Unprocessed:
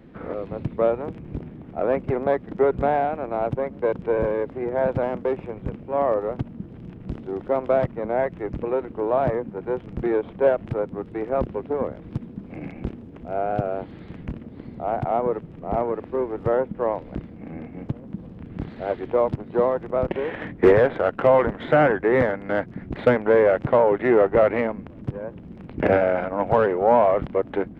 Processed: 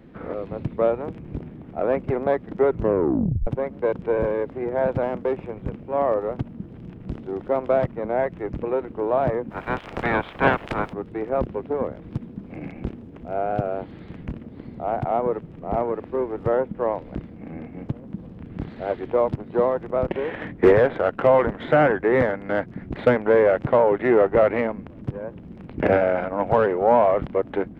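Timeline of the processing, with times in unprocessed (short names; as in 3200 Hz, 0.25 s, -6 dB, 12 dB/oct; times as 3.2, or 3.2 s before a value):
2.69 tape stop 0.78 s
9.5–10.92 spectral limiter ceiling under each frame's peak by 26 dB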